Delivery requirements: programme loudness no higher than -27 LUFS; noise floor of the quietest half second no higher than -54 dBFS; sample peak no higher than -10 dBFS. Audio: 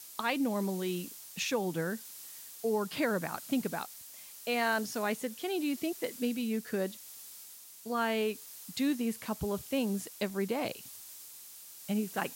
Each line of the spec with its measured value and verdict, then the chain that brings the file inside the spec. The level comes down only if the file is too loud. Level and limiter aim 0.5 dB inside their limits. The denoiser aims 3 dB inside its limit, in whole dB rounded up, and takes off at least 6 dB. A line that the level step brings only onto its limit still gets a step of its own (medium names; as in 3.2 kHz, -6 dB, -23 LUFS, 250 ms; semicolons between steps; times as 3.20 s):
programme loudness -34.0 LUFS: pass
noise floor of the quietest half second -51 dBFS: fail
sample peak -16.5 dBFS: pass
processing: noise reduction 6 dB, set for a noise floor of -51 dBFS